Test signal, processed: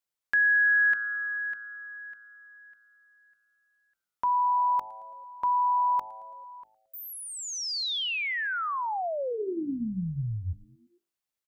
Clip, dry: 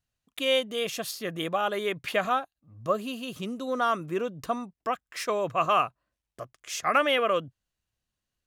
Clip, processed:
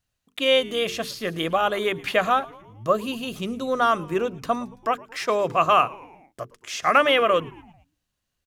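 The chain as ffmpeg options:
-filter_complex "[0:a]bandreject=f=50:t=h:w=6,bandreject=f=100:t=h:w=6,bandreject=f=150:t=h:w=6,bandreject=f=200:t=h:w=6,bandreject=f=250:t=h:w=6,bandreject=f=300:t=h:w=6,bandreject=f=350:t=h:w=6,bandreject=f=400:t=h:w=6,bandreject=f=450:t=h:w=6,asplit=5[a][b][c][d][e];[b]adelay=111,afreqshift=-110,volume=-22.5dB[f];[c]adelay=222,afreqshift=-220,volume=-27.1dB[g];[d]adelay=333,afreqshift=-330,volume=-31.7dB[h];[e]adelay=444,afreqshift=-440,volume=-36.2dB[i];[a][f][g][h][i]amix=inputs=5:normalize=0,acrossover=split=5400[j][k];[k]acompressor=threshold=-47dB:ratio=4:attack=1:release=60[l];[j][l]amix=inputs=2:normalize=0,volume=5.5dB"

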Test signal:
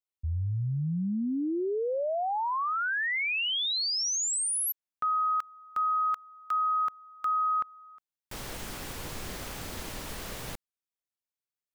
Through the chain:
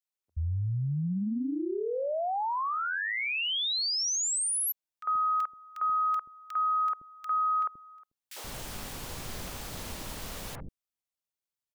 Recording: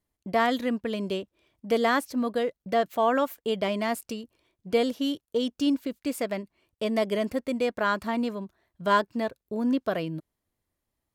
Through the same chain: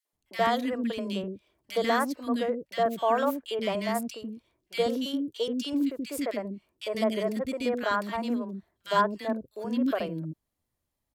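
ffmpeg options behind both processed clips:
-filter_complex "[0:a]acrossover=split=370|1800[a][b][c];[b]adelay=50[d];[a]adelay=130[e];[e][d][c]amix=inputs=3:normalize=0"

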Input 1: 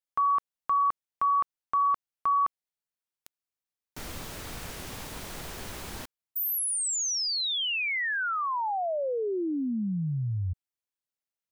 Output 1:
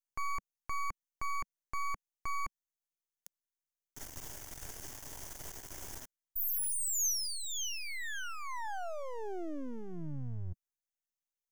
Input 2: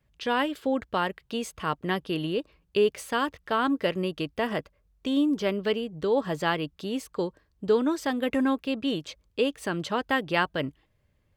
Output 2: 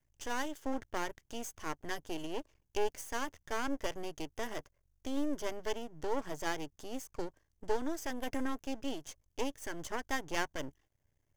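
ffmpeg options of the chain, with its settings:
-af "aeval=exprs='max(val(0),0)':c=same,equalizer=f=200:t=o:w=0.33:g=-11,equalizer=f=500:t=o:w=0.33:g=-4,equalizer=f=1.25k:t=o:w=0.33:g=-6,equalizer=f=2.5k:t=o:w=0.33:g=-6,equalizer=f=4k:t=o:w=0.33:g=-10,equalizer=f=6.3k:t=o:w=0.33:g=8,crystalizer=i=0.5:c=0,volume=-4.5dB"

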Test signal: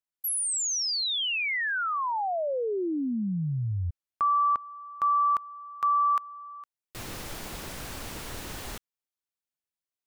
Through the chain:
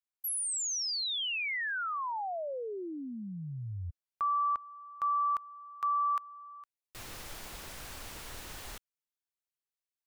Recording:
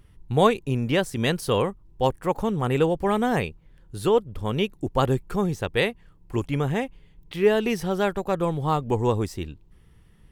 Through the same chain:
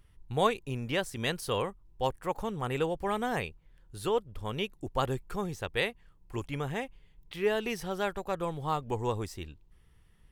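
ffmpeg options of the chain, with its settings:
-af "equalizer=f=210:t=o:w=2.7:g=-6.5,volume=-5dB"

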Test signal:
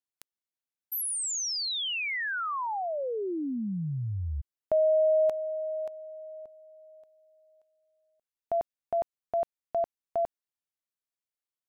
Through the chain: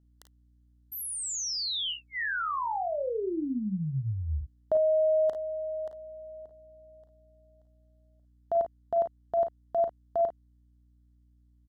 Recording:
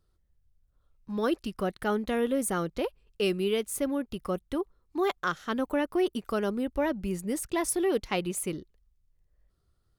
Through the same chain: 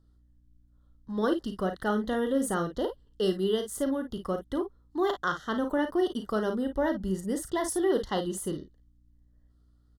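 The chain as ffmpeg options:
-filter_complex "[0:a]aeval=exprs='val(0)+0.000708*(sin(2*PI*60*n/s)+sin(2*PI*2*60*n/s)/2+sin(2*PI*3*60*n/s)/3+sin(2*PI*4*60*n/s)/4+sin(2*PI*5*60*n/s)/5)':c=same,asuperstop=centerf=2400:order=12:qfactor=2.8,highshelf=f=9.9k:g=-9.5,asplit=2[a][b];[b]aecho=0:1:37|52:0.335|0.316[c];[a][c]amix=inputs=2:normalize=0"

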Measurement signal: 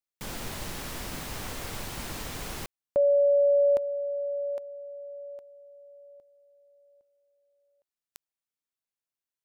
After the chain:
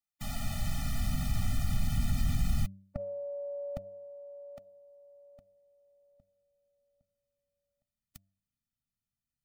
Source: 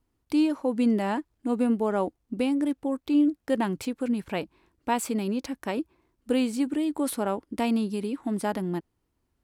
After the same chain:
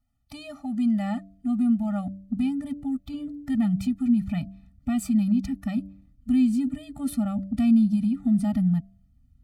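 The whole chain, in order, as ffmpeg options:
-filter_complex "[0:a]bandreject=f=96.81:t=h:w=4,bandreject=f=193.62:t=h:w=4,bandreject=f=290.43:t=h:w=4,bandreject=f=387.24:t=h:w=4,bandreject=f=484.05:t=h:w=4,bandreject=f=580.86:t=h:w=4,bandreject=f=677.67:t=h:w=4,asubboost=boost=10:cutoff=220,asplit=2[a][b];[b]acompressor=threshold=-23dB:ratio=12:attack=1.2:release=85:knee=1:detection=rms,volume=1dB[c];[a][c]amix=inputs=2:normalize=0,afftfilt=real='re*eq(mod(floor(b*sr/1024/290),2),0)':imag='im*eq(mod(floor(b*sr/1024/290),2),0)':win_size=1024:overlap=0.75,volume=-7dB"

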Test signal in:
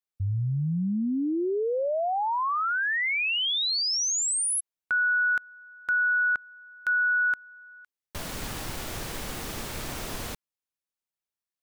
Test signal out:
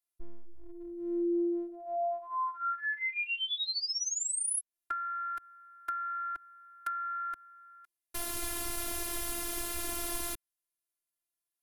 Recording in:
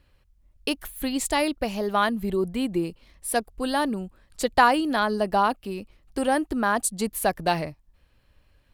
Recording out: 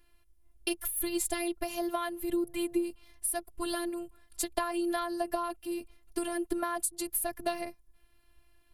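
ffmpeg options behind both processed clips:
-filter_complex "[0:a]equalizer=f=11k:t=o:w=0.48:g=14,acrossover=split=220[a][b];[b]acompressor=threshold=-30dB:ratio=10:attack=96:release=161:knee=1:detection=rms[c];[a][c]amix=inputs=2:normalize=0,afftfilt=real='hypot(re,im)*cos(PI*b)':imag='0':win_size=512:overlap=0.75"

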